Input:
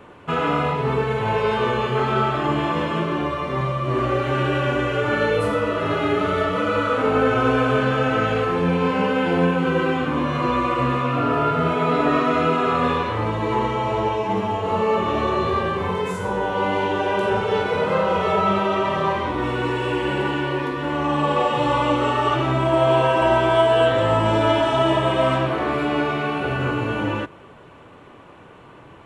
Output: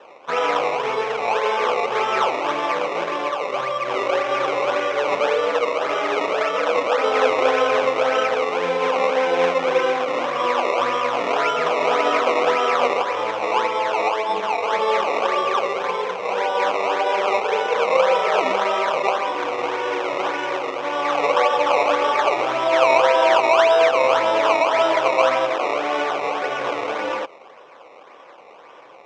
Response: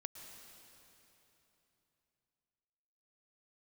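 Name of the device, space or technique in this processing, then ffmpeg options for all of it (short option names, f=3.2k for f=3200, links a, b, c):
circuit-bent sampling toy: -af "acrusher=samples=19:mix=1:aa=0.000001:lfo=1:lforange=19:lforate=1.8,highpass=490,equalizer=f=520:t=q:w=4:g=9,equalizer=f=770:t=q:w=4:g=5,equalizer=f=1.1k:t=q:w=4:g=5,equalizer=f=2.3k:t=q:w=4:g=6,equalizer=f=4.5k:t=q:w=4:g=-9,lowpass=f=5.2k:w=0.5412,lowpass=f=5.2k:w=1.3066,volume=-1dB"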